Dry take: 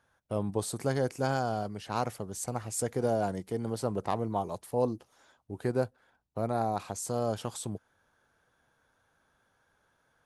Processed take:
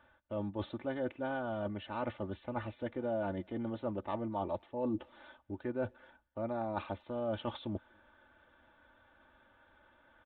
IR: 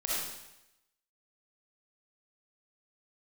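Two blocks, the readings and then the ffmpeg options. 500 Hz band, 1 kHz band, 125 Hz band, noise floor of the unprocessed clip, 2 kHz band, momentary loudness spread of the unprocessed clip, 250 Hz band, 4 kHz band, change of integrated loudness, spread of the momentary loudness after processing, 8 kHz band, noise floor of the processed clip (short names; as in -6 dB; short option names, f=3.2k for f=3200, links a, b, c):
-5.5 dB, -7.0 dB, -9.0 dB, -73 dBFS, -3.5 dB, 7 LU, -3.0 dB, -6.5 dB, -6.0 dB, 6 LU, under -40 dB, -67 dBFS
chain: -filter_complex "[0:a]aresample=8000,aresample=44100,areverse,acompressor=threshold=-40dB:ratio=5,areverse,aecho=1:1:3.4:0.79,asplit=2[a][b];[b]adelay=240,highpass=300,lowpass=3.4k,asoftclip=type=hard:threshold=-38.5dB,volume=-30dB[c];[a][c]amix=inputs=2:normalize=0,volume=5dB"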